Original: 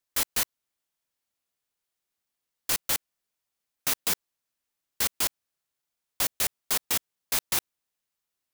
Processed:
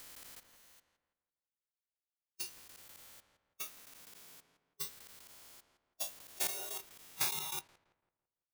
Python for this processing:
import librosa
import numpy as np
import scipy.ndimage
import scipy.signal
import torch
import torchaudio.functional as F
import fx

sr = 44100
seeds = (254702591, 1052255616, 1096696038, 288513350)

y = fx.spec_steps(x, sr, hold_ms=400)
y = fx.transient(y, sr, attack_db=10, sustain_db=-6)
y = fx.echo_filtered(y, sr, ms=167, feedback_pct=42, hz=2100.0, wet_db=-8.0)
y = fx.noise_reduce_blind(y, sr, reduce_db=17)
y = y * 10.0 ** (1.0 / 20.0)